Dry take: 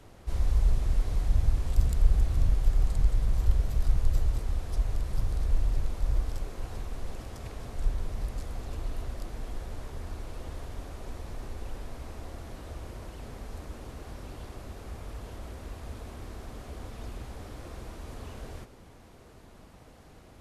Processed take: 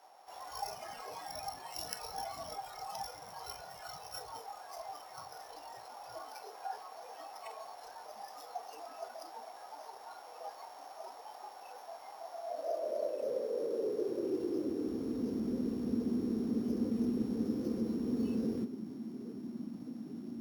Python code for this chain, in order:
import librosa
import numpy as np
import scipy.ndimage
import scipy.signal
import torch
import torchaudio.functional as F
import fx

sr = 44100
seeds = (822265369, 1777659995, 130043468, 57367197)

y = np.r_[np.sort(x[:len(x) // 8 * 8].reshape(-1, 8), axis=1).ravel(), x[len(x) // 8 * 8:]]
y = fx.filter_sweep_highpass(y, sr, from_hz=780.0, to_hz=230.0, start_s=12.31, end_s=15.42, q=5.4)
y = fx.noise_reduce_blind(y, sr, reduce_db=14)
y = F.gain(torch.from_numpy(y), 6.5).numpy()